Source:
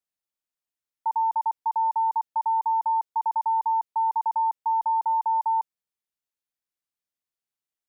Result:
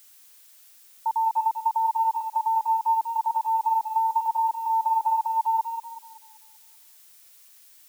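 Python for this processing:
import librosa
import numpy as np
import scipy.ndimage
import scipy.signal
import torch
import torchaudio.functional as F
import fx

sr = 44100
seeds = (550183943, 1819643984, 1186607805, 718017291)

y = fx.echo_tape(x, sr, ms=192, feedback_pct=55, wet_db=-5.0, lp_hz=1000.0, drive_db=16.0, wow_cents=38)
y = fx.dmg_noise_colour(y, sr, seeds[0], colour='blue', level_db=-53.0)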